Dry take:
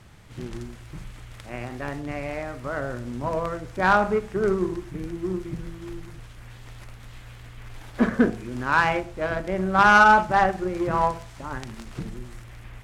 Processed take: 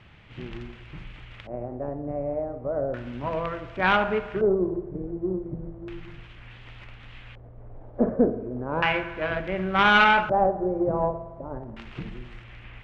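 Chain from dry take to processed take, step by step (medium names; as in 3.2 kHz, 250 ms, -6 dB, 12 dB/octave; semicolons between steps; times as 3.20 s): spring tank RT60 1.4 s, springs 55 ms, chirp 50 ms, DRR 12.5 dB; one-sided clip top -19 dBFS; LFO low-pass square 0.34 Hz 590–2800 Hz; trim -2.5 dB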